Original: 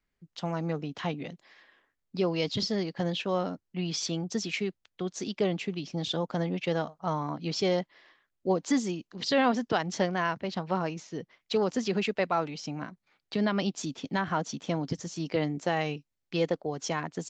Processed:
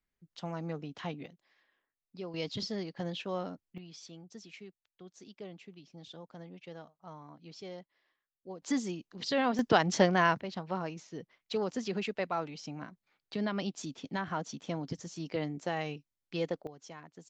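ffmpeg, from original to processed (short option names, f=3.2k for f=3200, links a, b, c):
-af "asetnsamples=n=441:p=0,asendcmd='1.26 volume volume -14dB;2.34 volume volume -7dB;3.78 volume volume -18dB;8.62 volume volume -5dB;9.59 volume volume 3dB;10.41 volume volume -6dB;16.67 volume volume -17dB',volume=-6.5dB"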